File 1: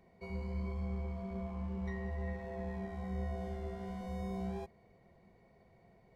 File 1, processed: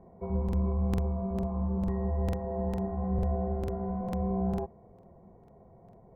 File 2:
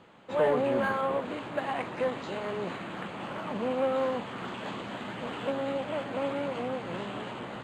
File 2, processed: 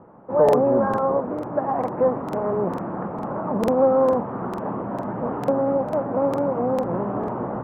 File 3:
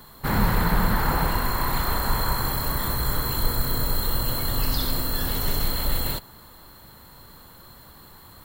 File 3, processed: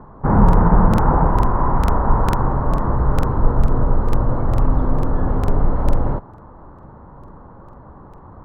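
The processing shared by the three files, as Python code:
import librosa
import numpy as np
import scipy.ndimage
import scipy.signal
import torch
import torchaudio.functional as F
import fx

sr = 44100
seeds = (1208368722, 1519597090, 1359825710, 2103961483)

p1 = fx.rider(x, sr, range_db=10, speed_s=2.0)
p2 = x + (p1 * librosa.db_to_amplitude(2.5))
p3 = scipy.signal.sosfilt(scipy.signal.butter(4, 1100.0, 'lowpass', fs=sr, output='sos'), p2)
p4 = fx.buffer_crackle(p3, sr, first_s=0.44, period_s=0.45, block=2048, kind='repeat')
y = p4 * librosa.db_to_amplitude(2.0)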